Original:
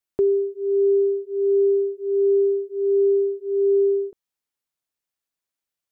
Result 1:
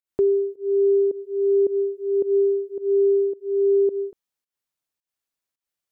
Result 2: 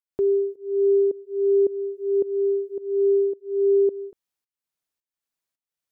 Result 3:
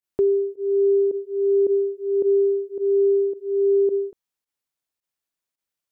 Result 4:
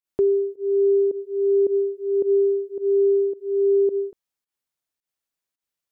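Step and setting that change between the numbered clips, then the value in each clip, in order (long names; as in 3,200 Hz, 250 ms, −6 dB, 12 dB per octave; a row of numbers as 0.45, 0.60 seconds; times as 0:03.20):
fake sidechain pumping, release: 185, 456, 64, 117 milliseconds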